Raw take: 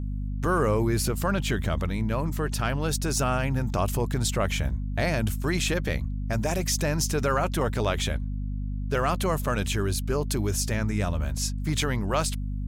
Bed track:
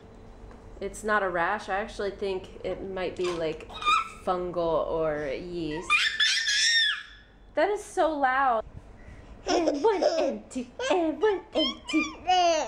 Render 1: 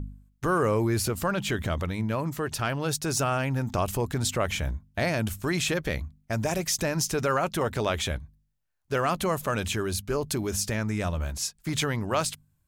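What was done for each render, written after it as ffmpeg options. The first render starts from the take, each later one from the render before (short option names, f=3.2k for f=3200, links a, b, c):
-af "bandreject=f=50:t=h:w=4,bandreject=f=100:t=h:w=4,bandreject=f=150:t=h:w=4,bandreject=f=200:t=h:w=4,bandreject=f=250:t=h:w=4"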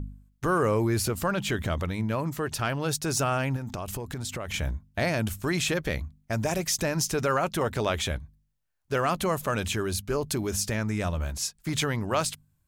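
-filter_complex "[0:a]asettb=1/sr,asplit=3[a][b][c];[a]atrim=end=3.564[d];[b]atrim=start=3.56:end=4.54,asetpts=PTS-STARTPTS,afade=t=in:d=0.004:c=qsin,afade=t=out:st=0.976:d=0.004:c=qsin,acompressor=threshold=-30dB:ratio=6:attack=3.2:release=140:knee=1:detection=peak[e];[c]atrim=start=4.536[f];[d][e]acrossfade=d=0.004:c1=hsin:c2=qsin[g];[g][f]acrossfade=d=0.004:c1=qsin:c2=hsin"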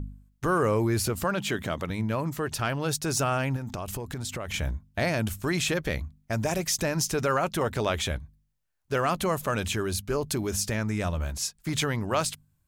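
-filter_complex "[0:a]asettb=1/sr,asplit=3[a][b][c];[a]atrim=end=1.244[d];[b]atrim=start=1.24:end=1.9,asetpts=PTS-STARTPTS,afade=t=in:d=0.004:c=qsin,afade=t=out:st=0.656:d=0.004:c=qsin,highpass=140[e];[c]atrim=start=1.896[f];[d][e]acrossfade=d=0.004:c1=hsin:c2=qsin[g];[g][f]acrossfade=d=0.004:c1=qsin:c2=hsin"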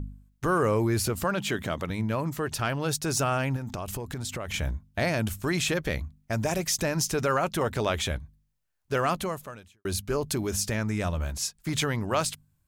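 -filter_complex "[0:a]asplit=2[a][b];[a]atrim=end=9.85,asetpts=PTS-STARTPTS,afade=t=out:st=9.11:d=0.74:c=qua[c];[b]atrim=start=9.85,asetpts=PTS-STARTPTS,afade=t=in:d=0.004:c=hsin[d];[c][d]concat=n=2:v=0:a=1"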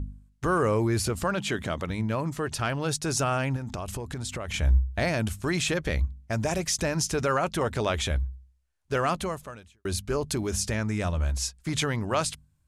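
-af "lowpass=f=11k:w=0.5412,lowpass=f=11k:w=1.3066,equalizer=f=64:t=o:w=0.24:g=14.5"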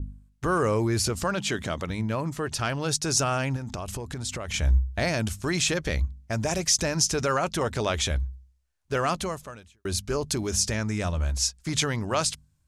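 -af "adynamicequalizer=threshold=0.00562:dfrequency=5700:dqfactor=1.2:tfrequency=5700:tqfactor=1.2:attack=5:release=100:ratio=0.375:range=3.5:mode=boostabove:tftype=bell"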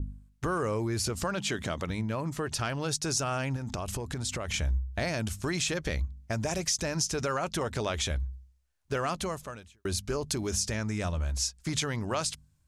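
-af "acompressor=threshold=-29dB:ratio=2.5"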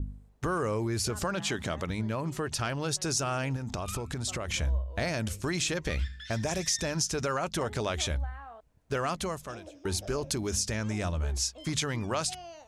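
-filter_complex "[1:a]volume=-23dB[a];[0:a][a]amix=inputs=2:normalize=0"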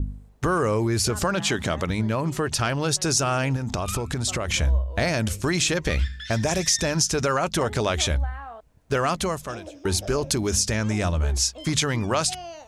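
-af "volume=7.5dB"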